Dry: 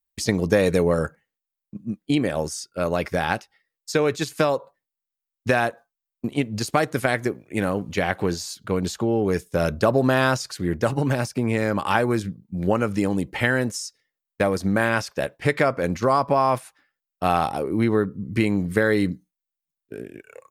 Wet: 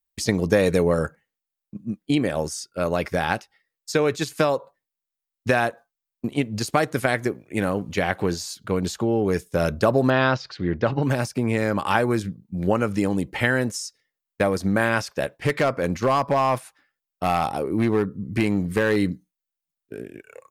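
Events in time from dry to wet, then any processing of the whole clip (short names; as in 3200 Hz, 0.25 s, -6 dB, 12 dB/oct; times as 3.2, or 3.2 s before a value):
10.1–11.03 inverse Chebyshev low-pass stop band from 12000 Hz, stop band 60 dB
15.35–18.96 hard clip -14 dBFS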